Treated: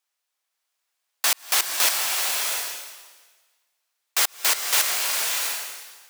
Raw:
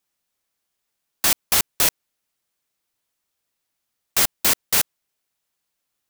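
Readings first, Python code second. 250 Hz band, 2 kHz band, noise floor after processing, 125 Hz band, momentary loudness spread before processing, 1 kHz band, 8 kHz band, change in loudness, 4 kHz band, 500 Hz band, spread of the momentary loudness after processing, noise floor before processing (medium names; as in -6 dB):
-13.0 dB, +2.5 dB, -81 dBFS, under -20 dB, 5 LU, +1.5 dB, +0.5 dB, -2.5 dB, +2.0 dB, -2.5 dB, 11 LU, -79 dBFS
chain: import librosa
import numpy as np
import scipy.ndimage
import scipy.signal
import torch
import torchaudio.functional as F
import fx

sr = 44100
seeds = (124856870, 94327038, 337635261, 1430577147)

y = scipy.signal.sosfilt(scipy.signal.butter(2, 680.0, 'highpass', fs=sr, output='sos'), x)
y = fx.high_shelf(y, sr, hz=9900.0, db=-5.5)
y = fx.rev_bloom(y, sr, seeds[0], attack_ms=690, drr_db=0.5)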